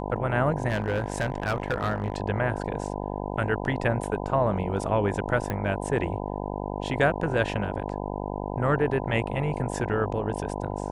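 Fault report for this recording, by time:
buzz 50 Hz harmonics 20 -32 dBFS
0.68–2.18 s: clipped -21 dBFS
5.50 s: pop -16 dBFS

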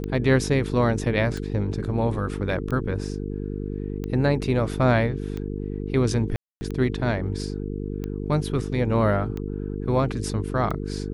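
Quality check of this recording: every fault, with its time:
buzz 50 Hz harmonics 9 -30 dBFS
tick 45 rpm -19 dBFS
6.36–6.61 s: dropout 250 ms

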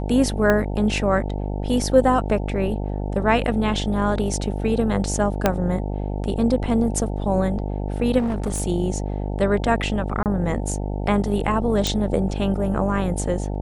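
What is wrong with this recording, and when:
buzz 50 Hz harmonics 18 -26 dBFS
0.50 s: pop -7 dBFS
5.46 s: pop -3 dBFS
8.18–8.61 s: clipped -19.5 dBFS
10.23–10.26 s: dropout 28 ms
11.87 s: pop -7 dBFS

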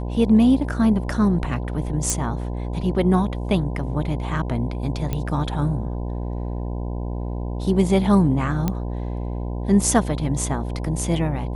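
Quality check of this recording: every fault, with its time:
buzz 60 Hz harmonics 17 -27 dBFS
2.10 s: pop
5.13 s: pop -12 dBFS
8.68 s: pop -9 dBFS

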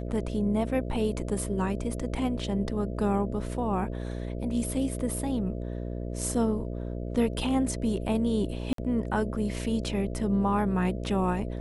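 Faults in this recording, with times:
buzz 60 Hz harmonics 11 -34 dBFS
8.73–8.78 s: dropout 53 ms

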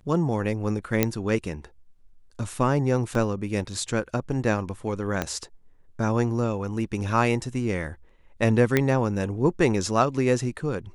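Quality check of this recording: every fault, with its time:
1.03 s: pop -5 dBFS
3.15 s: dropout 2.6 ms
5.22 s: pop -11 dBFS
8.77 s: pop -7 dBFS

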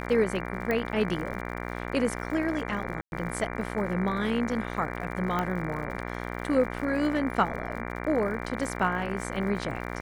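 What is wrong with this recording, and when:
buzz 60 Hz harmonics 39 -35 dBFS
crackle 86 per s -38 dBFS
0.71 s: pop -16 dBFS
3.01–3.12 s: dropout 111 ms
5.39 s: pop -15 dBFS

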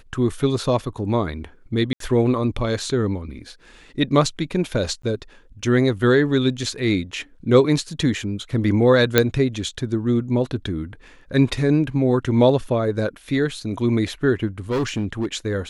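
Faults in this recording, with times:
1.93–2.00 s: dropout 73 ms
5.02–5.03 s: dropout 14 ms
9.18 s: pop 0 dBFS
14.70–15.26 s: clipped -18.5 dBFS

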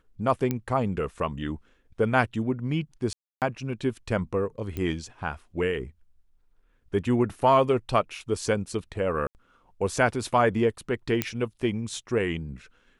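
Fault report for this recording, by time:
0.51 s: pop -14 dBFS
3.13–3.42 s: dropout 288 ms
4.77 s: pop -19 dBFS
9.27–9.35 s: dropout 79 ms
11.22 s: pop -8 dBFS

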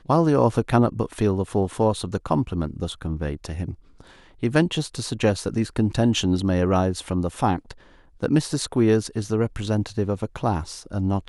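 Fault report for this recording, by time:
no faults

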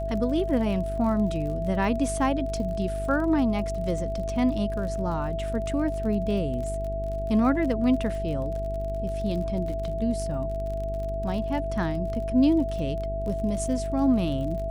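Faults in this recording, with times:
buzz 50 Hz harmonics 9 -32 dBFS
crackle 41 per s -34 dBFS
whine 660 Hz -30 dBFS

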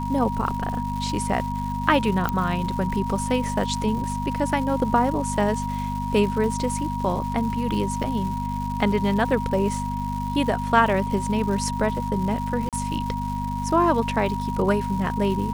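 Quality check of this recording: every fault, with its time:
crackle 320 per s -32 dBFS
hum 50 Hz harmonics 5 -29 dBFS
whine 950 Hz -29 dBFS
2.29 s: pop -11 dBFS
12.69–12.73 s: dropout 37 ms

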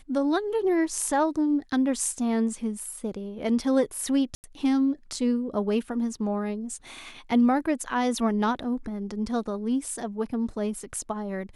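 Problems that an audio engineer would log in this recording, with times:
4.35–4.44 s: dropout 89 ms

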